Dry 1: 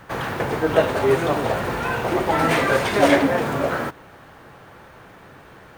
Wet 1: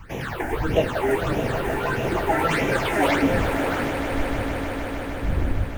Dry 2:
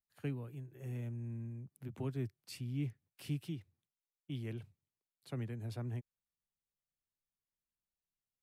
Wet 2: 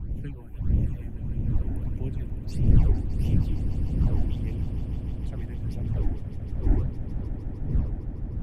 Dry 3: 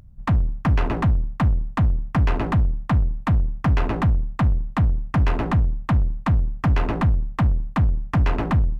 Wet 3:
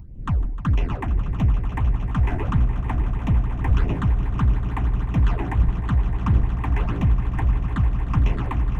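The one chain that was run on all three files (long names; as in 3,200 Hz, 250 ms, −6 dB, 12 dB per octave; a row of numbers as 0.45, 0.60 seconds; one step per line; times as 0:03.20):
wind on the microphone 110 Hz −29 dBFS
all-pass phaser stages 8, 1.6 Hz, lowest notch 140–1,400 Hz
echo that builds up and dies away 153 ms, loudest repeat 5, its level −13 dB
normalise the peak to −6 dBFS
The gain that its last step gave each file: −0.5, +3.0, −2.5 decibels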